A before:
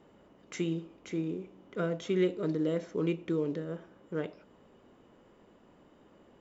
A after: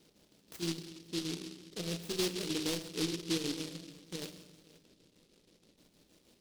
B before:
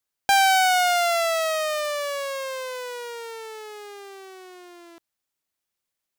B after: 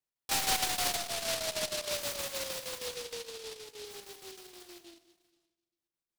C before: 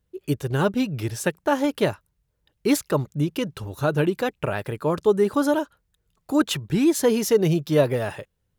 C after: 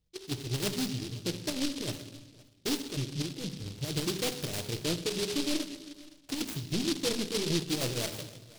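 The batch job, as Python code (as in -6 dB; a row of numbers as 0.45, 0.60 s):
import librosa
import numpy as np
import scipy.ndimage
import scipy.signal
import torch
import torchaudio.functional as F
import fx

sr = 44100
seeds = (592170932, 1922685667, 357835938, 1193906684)

p1 = fx.dynamic_eq(x, sr, hz=330.0, q=1.9, threshold_db=-34.0, ratio=4.0, max_db=6)
p2 = 10.0 ** (-22.5 / 20.0) * np.tanh(p1 / 10.0 ** (-22.5 / 20.0))
p3 = fx.chopper(p2, sr, hz=6.4, depth_pct=60, duty_pct=60)
p4 = fx.filter_lfo_lowpass(p3, sr, shape='square', hz=0.52, low_hz=600.0, high_hz=5000.0, q=0.92)
p5 = p4 + fx.echo_single(p4, sr, ms=517, db=-23.0, dry=0)
p6 = fx.room_shoebox(p5, sr, seeds[0], volume_m3=400.0, walls='mixed', distance_m=0.57)
p7 = fx.noise_mod_delay(p6, sr, seeds[1], noise_hz=3900.0, depth_ms=0.27)
y = p7 * 10.0 ** (-5.5 / 20.0)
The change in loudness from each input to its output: -3.5, -11.0, -10.0 LU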